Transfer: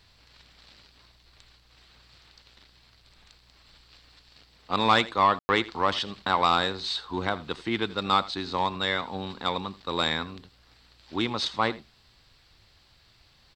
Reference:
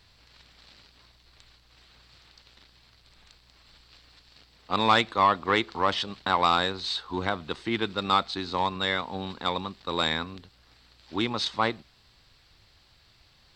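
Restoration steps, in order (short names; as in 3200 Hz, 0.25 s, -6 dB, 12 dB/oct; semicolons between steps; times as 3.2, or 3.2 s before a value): room tone fill 5.39–5.49; inverse comb 82 ms -19 dB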